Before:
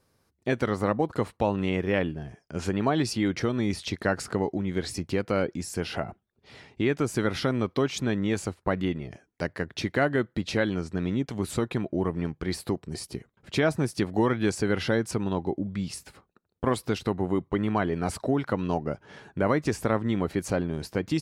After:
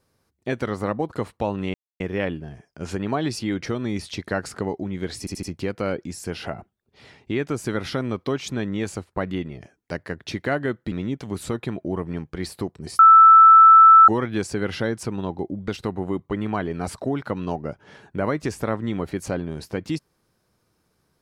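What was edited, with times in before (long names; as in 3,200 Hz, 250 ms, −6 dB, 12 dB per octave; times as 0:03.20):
0:01.74: splice in silence 0.26 s
0:04.93: stutter 0.08 s, 4 plays
0:10.42–0:11.00: remove
0:13.07–0:14.16: beep over 1,320 Hz −6.5 dBFS
0:15.76–0:16.90: remove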